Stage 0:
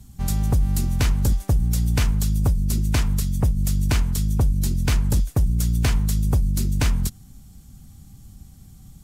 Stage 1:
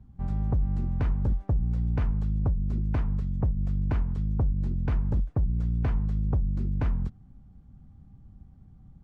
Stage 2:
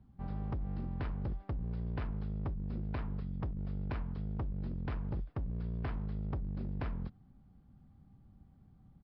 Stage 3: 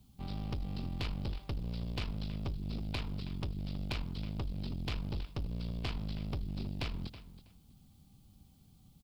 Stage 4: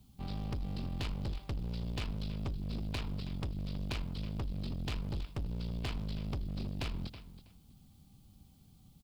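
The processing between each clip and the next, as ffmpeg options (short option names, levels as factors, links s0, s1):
-af "lowpass=1200,volume=0.501"
-af "lowshelf=f=130:g=-10,aresample=11025,asoftclip=type=hard:threshold=0.0335,aresample=44100,volume=0.708"
-af "aexciter=amount=12.3:drive=2.5:freq=2600,aecho=1:1:323|646:0.2|0.0359,aeval=exprs='0.0794*(cos(1*acos(clip(val(0)/0.0794,-1,1)))-cos(1*PI/2))+0.00708*(cos(6*acos(clip(val(0)/0.0794,-1,1)))-cos(6*PI/2))':c=same,volume=0.891"
-af "aeval=exprs='clip(val(0),-1,0.0251)':c=same,volume=1.12"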